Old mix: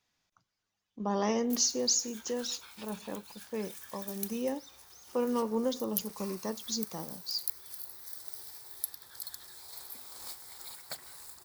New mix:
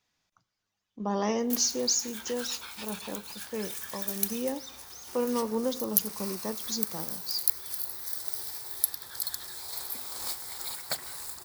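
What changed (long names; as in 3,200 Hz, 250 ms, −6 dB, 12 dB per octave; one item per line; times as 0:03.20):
background +9.0 dB
reverb: on, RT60 0.85 s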